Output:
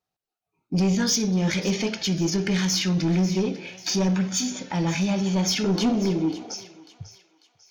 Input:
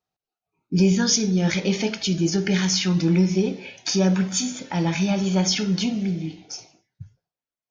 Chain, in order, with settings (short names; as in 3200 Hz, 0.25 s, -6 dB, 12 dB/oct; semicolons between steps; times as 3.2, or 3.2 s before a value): 5.64–6.54 band shelf 580 Hz +12 dB 2.6 oct; soft clip -16.5 dBFS, distortion -15 dB; thinning echo 0.545 s, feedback 44%, high-pass 920 Hz, level -14.5 dB